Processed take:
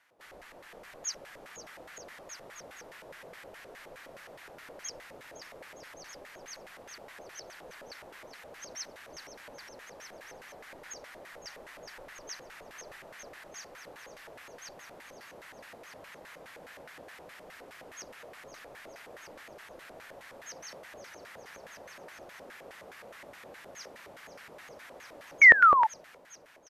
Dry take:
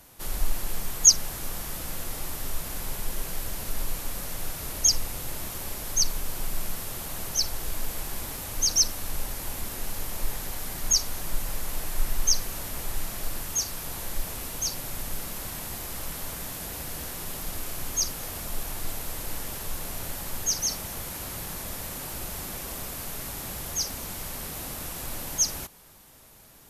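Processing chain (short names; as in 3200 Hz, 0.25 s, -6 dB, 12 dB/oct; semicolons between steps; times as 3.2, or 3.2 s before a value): bouncing-ball echo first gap 0.51 s, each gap 0.8×, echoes 5; painted sound fall, 25.41–25.87, 850–2300 Hz -9 dBFS; LFO band-pass square 4.8 Hz 540–1800 Hz; gain -2.5 dB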